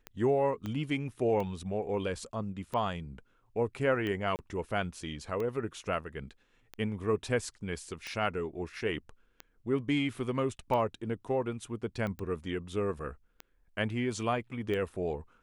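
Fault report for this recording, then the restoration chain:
scratch tick 45 rpm −24 dBFS
0:00.66: click −24 dBFS
0:04.36–0:04.39: drop-out 29 ms
0:12.19: click −29 dBFS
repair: click removal
repair the gap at 0:04.36, 29 ms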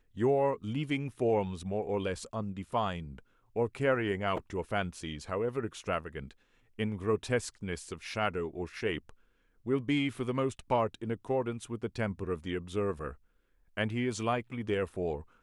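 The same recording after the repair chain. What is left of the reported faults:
0:00.66: click

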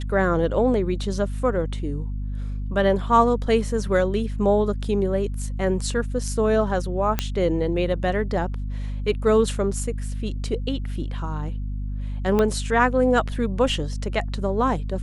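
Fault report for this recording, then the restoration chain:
mains hum 50 Hz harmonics 5 −28 dBFS
0:07.19: click −6 dBFS
0:12.39: click −10 dBFS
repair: click removal
hum removal 50 Hz, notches 5

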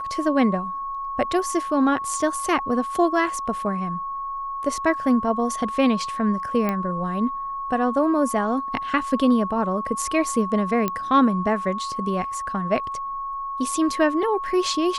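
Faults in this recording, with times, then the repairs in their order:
whistle 1,100 Hz −27 dBFS
0:06.69: click −12 dBFS
0:10.88: click −10 dBFS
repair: click removal
notch filter 1,100 Hz, Q 30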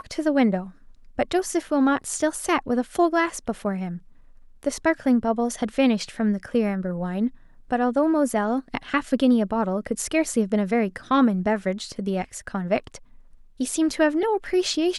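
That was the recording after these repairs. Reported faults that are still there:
0:06.69: click

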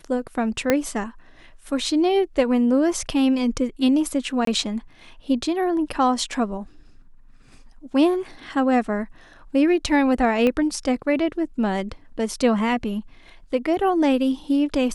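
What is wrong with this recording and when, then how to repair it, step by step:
0:00.70: click −4 dBFS
0:04.45–0:04.47: drop-out 23 ms
0:10.47: click −11 dBFS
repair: click removal
repair the gap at 0:04.45, 23 ms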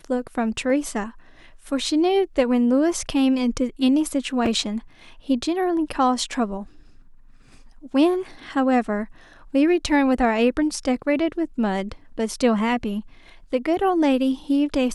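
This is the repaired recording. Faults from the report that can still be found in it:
0:00.70: click
0:10.47: click

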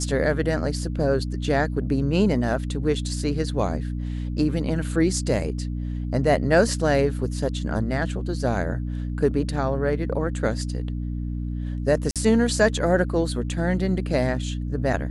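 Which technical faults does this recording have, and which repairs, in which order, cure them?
mains hum 60 Hz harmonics 5 −28 dBFS
0:12.11–0:12.16: drop-out 47 ms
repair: hum removal 60 Hz, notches 5
repair the gap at 0:12.11, 47 ms

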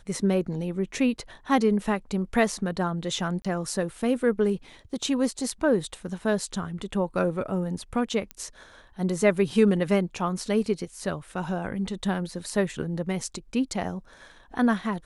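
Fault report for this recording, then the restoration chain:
0:03.42–0:03.45: drop-out 26 ms
0:08.31: click −19 dBFS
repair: click removal
repair the gap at 0:03.42, 26 ms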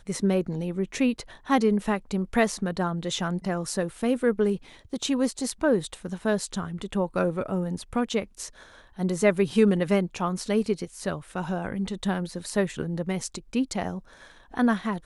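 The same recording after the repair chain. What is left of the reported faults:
none of them is left

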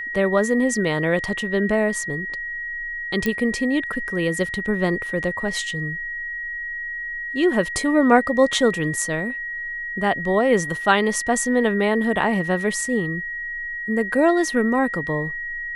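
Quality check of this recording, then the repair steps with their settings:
whistle 1,900 Hz −27 dBFS
0:03.26: click −9 dBFS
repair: click removal
notch filter 1,900 Hz, Q 30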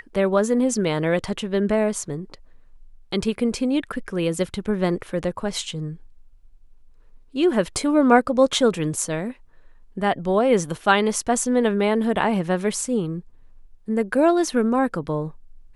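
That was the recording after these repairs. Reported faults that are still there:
none of them is left

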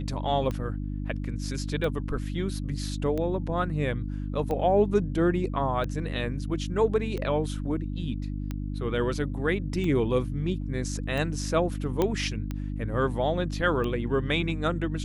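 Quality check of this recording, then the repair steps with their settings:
mains hum 50 Hz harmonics 6 −32 dBFS
scratch tick 45 rpm −20 dBFS
0:12.02: click −12 dBFS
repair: click removal
hum removal 50 Hz, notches 6

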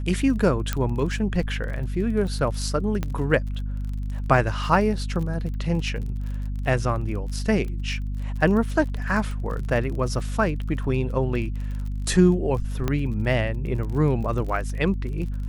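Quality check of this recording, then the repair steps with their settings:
surface crackle 30 per second −32 dBFS
mains hum 50 Hz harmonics 5 −28 dBFS
0:00.73: click −10 dBFS
0:03.03: click −14 dBFS
0:12.88: click −11 dBFS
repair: click removal
hum removal 50 Hz, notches 5

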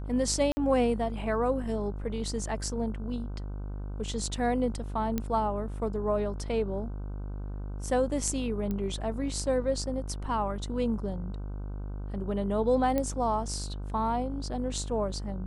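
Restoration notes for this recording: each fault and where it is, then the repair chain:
mains buzz 50 Hz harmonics 31 −36 dBFS
0:00.52–0:00.57: drop-out 50 ms
0:05.18: click −16 dBFS
0:08.71: click −21 dBFS
0:12.98: click −16 dBFS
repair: click removal
hum removal 50 Hz, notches 31
repair the gap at 0:00.52, 50 ms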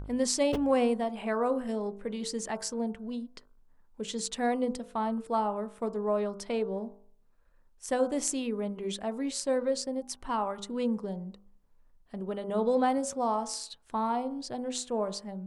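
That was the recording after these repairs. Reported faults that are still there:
none of them is left

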